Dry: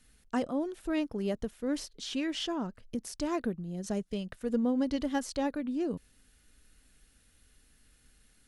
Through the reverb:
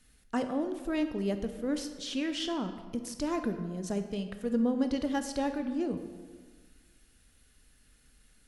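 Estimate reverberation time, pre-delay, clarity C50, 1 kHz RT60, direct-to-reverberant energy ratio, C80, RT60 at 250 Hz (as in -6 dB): 1.5 s, 16 ms, 9.0 dB, 1.5 s, 7.5 dB, 10.5 dB, 1.8 s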